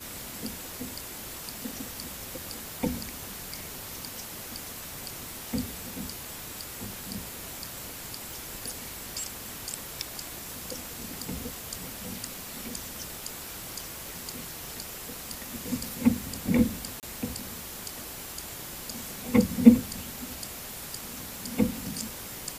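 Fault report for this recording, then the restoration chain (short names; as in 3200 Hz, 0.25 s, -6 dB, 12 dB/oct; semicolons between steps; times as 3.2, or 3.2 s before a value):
8.31 pop
17–17.03 gap 28 ms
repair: de-click; interpolate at 17, 28 ms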